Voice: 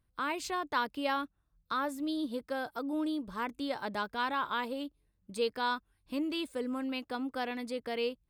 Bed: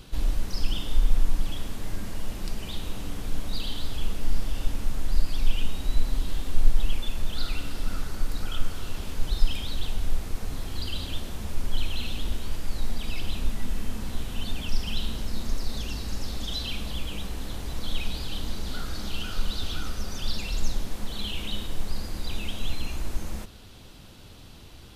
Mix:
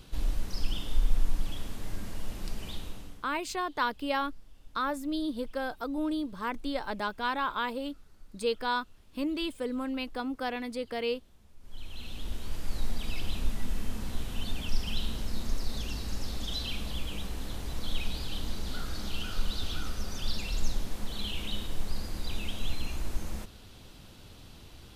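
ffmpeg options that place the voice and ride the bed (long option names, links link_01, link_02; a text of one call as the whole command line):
ffmpeg -i stem1.wav -i stem2.wav -filter_complex "[0:a]adelay=3050,volume=2dB[link_01];[1:a]volume=19dB,afade=type=out:start_time=2.7:duration=0.58:silence=0.0794328,afade=type=in:start_time=11.6:duration=1.15:silence=0.0668344[link_02];[link_01][link_02]amix=inputs=2:normalize=0" out.wav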